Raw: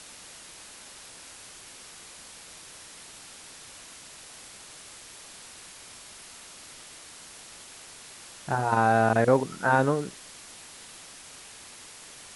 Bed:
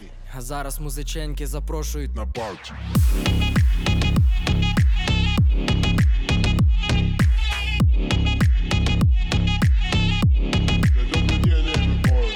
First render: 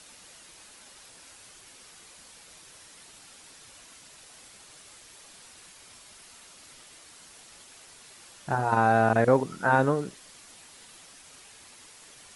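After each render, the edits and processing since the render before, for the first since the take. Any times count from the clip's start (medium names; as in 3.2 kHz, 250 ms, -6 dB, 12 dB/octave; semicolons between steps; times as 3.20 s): noise reduction 6 dB, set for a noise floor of -47 dBFS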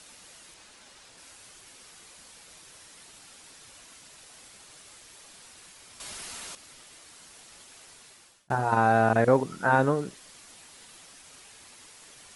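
0.54–1.18 s: Bessel low-pass 7.6 kHz; 6.00–6.55 s: gain +10.5 dB; 7.81–8.50 s: fade out equal-power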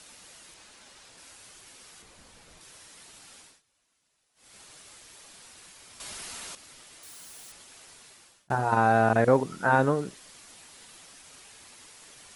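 2.02–2.61 s: tilt EQ -2 dB/octave; 3.39–4.58 s: dip -23.5 dB, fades 0.23 s; 7.03–7.52 s: zero-crossing glitches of -45.5 dBFS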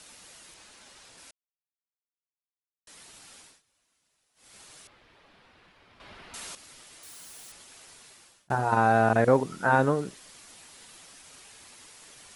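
1.31–2.87 s: mute; 4.87–6.34 s: distance through air 370 m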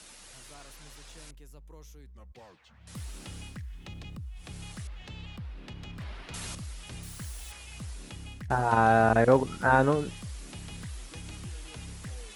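add bed -23.5 dB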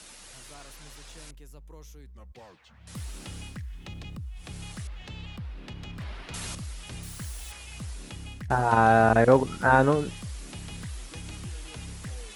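trim +2.5 dB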